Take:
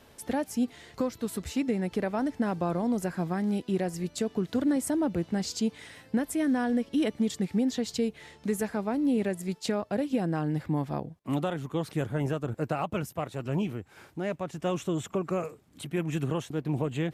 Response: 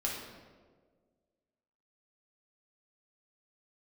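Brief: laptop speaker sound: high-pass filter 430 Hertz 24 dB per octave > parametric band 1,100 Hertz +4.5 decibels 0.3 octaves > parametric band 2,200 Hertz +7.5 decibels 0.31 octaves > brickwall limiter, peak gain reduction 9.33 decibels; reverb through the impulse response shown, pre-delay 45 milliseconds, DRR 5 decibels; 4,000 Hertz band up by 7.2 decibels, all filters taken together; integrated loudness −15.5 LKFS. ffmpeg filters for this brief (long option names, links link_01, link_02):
-filter_complex "[0:a]equalizer=frequency=4000:width_type=o:gain=8.5,asplit=2[link_01][link_02];[1:a]atrim=start_sample=2205,adelay=45[link_03];[link_02][link_03]afir=irnorm=-1:irlink=0,volume=-9.5dB[link_04];[link_01][link_04]amix=inputs=2:normalize=0,highpass=frequency=430:width=0.5412,highpass=frequency=430:width=1.3066,equalizer=frequency=1100:width_type=o:width=0.3:gain=4.5,equalizer=frequency=2200:width_type=o:width=0.31:gain=7.5,volume=20dB,alimiter=limit=-4.5dB:level=0:latency=1"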